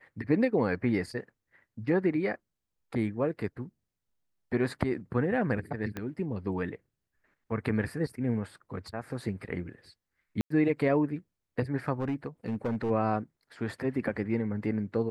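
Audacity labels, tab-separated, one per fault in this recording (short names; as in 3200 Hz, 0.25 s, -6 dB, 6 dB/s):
5.970000	5.970000	pop -21 dBFS
10.410000	10.500000	gap 94 ms
12.000000	12.910000	clipped -26 dBFS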